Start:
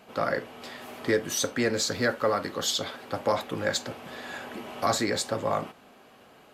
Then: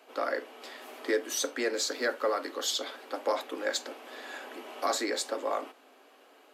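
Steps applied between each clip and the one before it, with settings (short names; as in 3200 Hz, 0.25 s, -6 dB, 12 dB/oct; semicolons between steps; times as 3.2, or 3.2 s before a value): Chebyshev high-pass 270 Hz, order 5; gain -3 dB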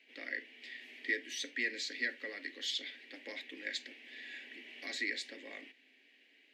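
EQ curve 240 Hz 0 dB, 650 Hz -17 dB, 1300 Hz -24 dB, 1900 Hz +11 dB, 3900 Hz +2 dB, 12000 Hz -17 dB; gain -7 dB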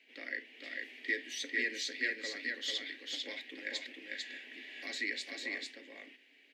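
echo 0.447 s -3 dB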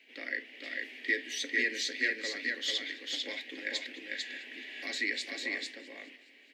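warbling echo 0.209 s, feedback 63%, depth 104 cents, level -21.5 dB; gain +4 dB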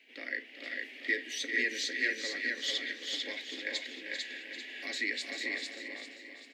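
feedback echo 0.393 s, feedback 47%, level -9 dB; gain -1 dB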